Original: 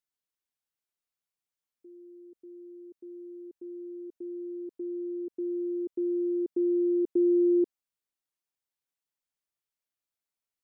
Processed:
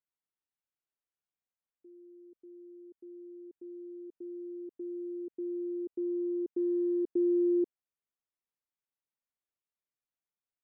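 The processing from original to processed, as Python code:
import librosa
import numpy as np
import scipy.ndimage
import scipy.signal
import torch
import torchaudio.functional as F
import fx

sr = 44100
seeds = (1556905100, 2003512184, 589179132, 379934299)

y = fx.wiener(x, sr, points=9)
y = y * librosa.db_to_amplitude(-4.0)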